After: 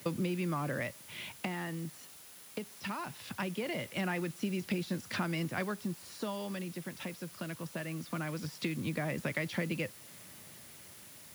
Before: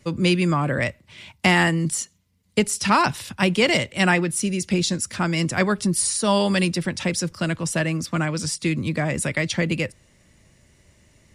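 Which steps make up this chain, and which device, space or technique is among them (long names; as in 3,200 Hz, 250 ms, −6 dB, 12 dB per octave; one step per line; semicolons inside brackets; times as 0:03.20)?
de-essing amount 65%
medium wave at night (band-pass filter 120–4,400 Hz; downward compressor 6 to 1, threshold −34 dBFS, peak gain reduction 18 dB; amplitude tremolo 0.21 Hz, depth 55%; steady tone 10,000 Hz −61 dBFS; white noise bed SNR 16 dB)
high-pass filter 67 Hz
level +2 dB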